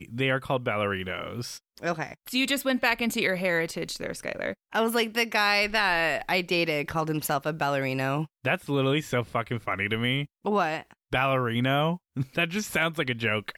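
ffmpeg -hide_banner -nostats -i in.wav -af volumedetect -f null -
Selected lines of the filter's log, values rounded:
mean_volume: -27.5 dB
max_volume: -9.5 dB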